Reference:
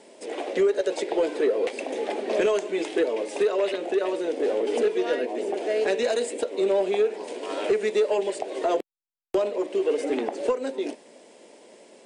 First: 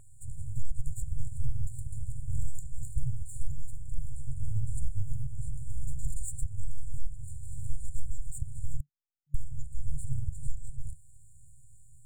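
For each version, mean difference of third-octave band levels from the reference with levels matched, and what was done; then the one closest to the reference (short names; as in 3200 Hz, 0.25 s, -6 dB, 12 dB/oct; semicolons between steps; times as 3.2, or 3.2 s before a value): 25.0 dB: half-wave gain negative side -12 dB; FFT band-reject 150–6900 Hz; tone controls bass -3 dB, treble -14 dB; gain +14.5 dB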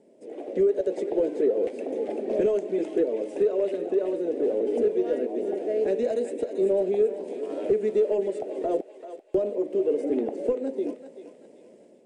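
7.0 dB: EQ curve 140 Hz 0 dB, 600 Hz -8 dB, 1000 Hz -21 dB, 2100 Hz -20 dB, 4000 Hz -24 dB, 7700 Hz -20 dB; thinning echo 0.388 s, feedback 49%, high-pass 890 Hz, level -8 dB; AGC gain up to 6 dB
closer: second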